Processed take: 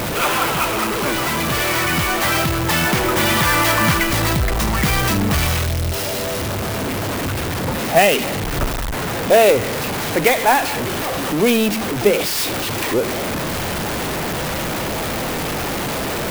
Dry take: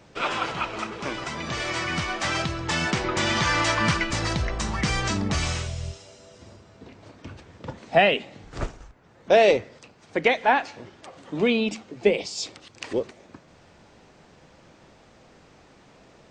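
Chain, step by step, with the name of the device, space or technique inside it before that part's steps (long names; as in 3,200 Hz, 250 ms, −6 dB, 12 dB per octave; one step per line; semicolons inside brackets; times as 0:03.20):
early CD player with a faulty converter (converter with a step at zero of −20 dBFS; converter with an unsteady clock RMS 0.035 ms)
level +3 dB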